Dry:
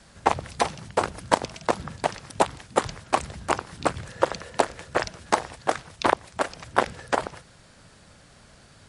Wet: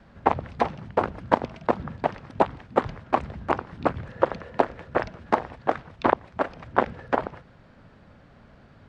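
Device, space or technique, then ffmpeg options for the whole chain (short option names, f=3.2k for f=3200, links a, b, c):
phone in a pocket: -af "lowpass=3.1k,equalizer=f=240:t=o:w=0.4:g=4,highshelf=f=2.2k:g=-10,volume=1.5dB"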